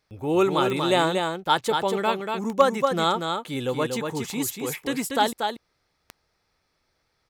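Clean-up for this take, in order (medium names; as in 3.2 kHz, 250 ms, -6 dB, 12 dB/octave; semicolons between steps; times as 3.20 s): clip repair -6.5 dBFS; de-click; inverse comb 237 ms -5 dB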